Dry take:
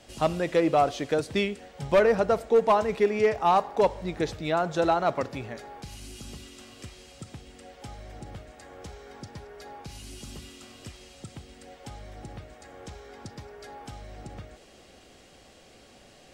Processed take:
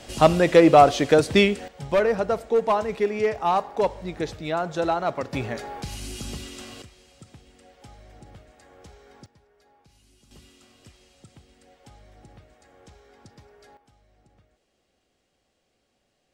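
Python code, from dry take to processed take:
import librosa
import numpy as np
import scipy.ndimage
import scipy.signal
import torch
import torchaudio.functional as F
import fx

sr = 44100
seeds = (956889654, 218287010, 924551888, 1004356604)

y = fx.gain(x, sr, db=fx.steps((0.0, 9.0), (1.68, -0.5), (5.33, 7.5), (6.82, -5.5), (9.26, -17.0), (10.31, -8.0), (13.77, -19.0)))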